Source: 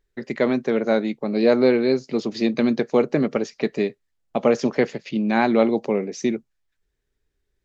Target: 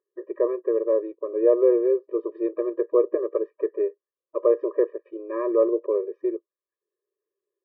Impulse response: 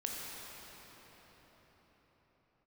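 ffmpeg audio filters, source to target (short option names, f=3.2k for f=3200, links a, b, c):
-af "lowpass=f=1.2k:w=0.5412,lowpass=f=1.2k:w=1.3066,afftfilt=real='re*eq(mod(floor(b*sr/1024/320),2),1)':imag='im*eq(mod(floor(b*sr/1024/320),2),1)':win_size=1024:overlap=0.75"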